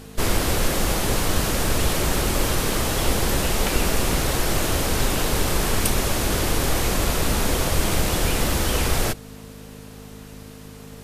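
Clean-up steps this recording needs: de-hum 52 Hz, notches 5; band-stop 450 Hz, Q 30

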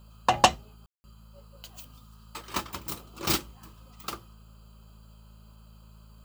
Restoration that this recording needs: de-hum 54.1 Hz, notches 4; room tone fill 0.86–1.04 s

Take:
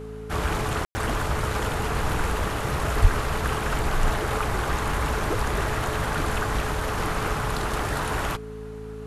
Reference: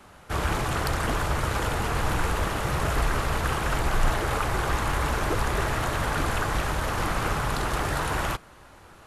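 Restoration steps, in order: de-hum 54 Hz, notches 5; band-stop 430 Hz, Q 30; de-plosive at 3.01 s; room tone fill 0.85–0.95 s

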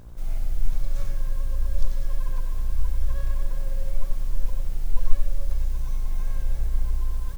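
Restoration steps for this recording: de-hum 58.9 Hz, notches 26; inverse comb 91 ms -7.5 dB

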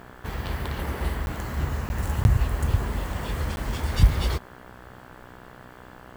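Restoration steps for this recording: de-hum 62.2 Hz, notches 28; interpolate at 1.26/1.89/2.24/3.56 s, 11 ms

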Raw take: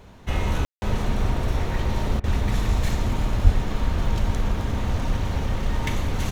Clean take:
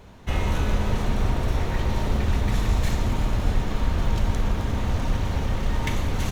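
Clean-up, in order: 3.43–3.55 s: high-pass 140 Hz 24 dB/octave; room tone fill 0.65–0.82 s; interpolate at 2.20 s, 37 ms

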